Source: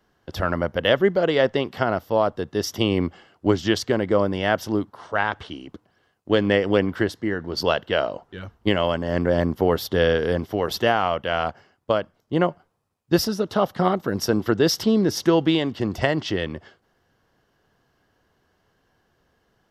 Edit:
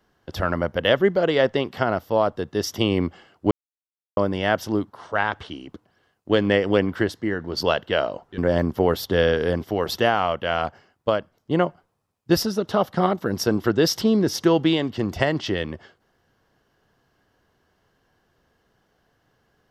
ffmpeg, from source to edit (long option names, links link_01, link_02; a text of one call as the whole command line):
ffmpeg -i in.wav -filter_complex "[0:a]asplit=4[link_01][link_02][link_03][link_04];[link_01]atrim=end=3.51,asetpts=PTS-STARTPTS,afade=type=out:start_time=3.506:duration=0.004:curve=hsin[link_05];[link_02]atrim=start=3.51:end=4.17,asetpts=PTS-STARTPTS,volume=0[link_06];[link_03]atrim=start=4.17:end=8.382,asetpts=PTS-STARTPTS,afade=type=in:duration=0.004:curve=hsin[link_07];[link_04]atrim=start=9.198[link_08];[link_05][link_06][link_07]concat=n=3:v=0:a=1[link_09];[link_09][link_08]acrossfade=duration=0.004:curve1=hsin:curve2=hsin" out.wav